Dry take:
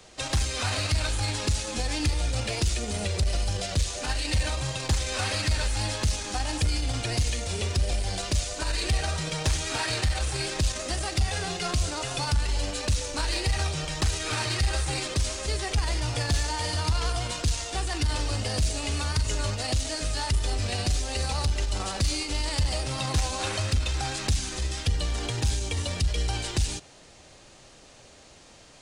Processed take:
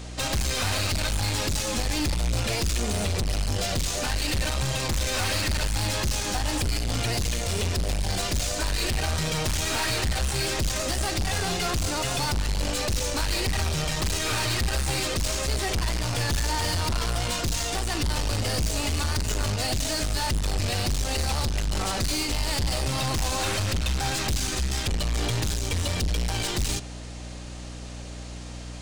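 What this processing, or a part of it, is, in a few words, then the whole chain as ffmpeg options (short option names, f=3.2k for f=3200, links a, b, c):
valve amplifier with mains hum: -af "aeval=exprs='(tanh(44.7*val(0)+0.4)-tanh(0.4))/44.7':c=same,aeval=exprs='val(0)+0.00501*(sin(2*PI*60*n/s)+sin(2*PI*2*60*n/s)/2+sin(2*PI*3*60*n/s)/3+sin(2*PI*4*60*n/s)/4+sin(2*PI*5*60*n/s)/5)':c=same,volume=9dB"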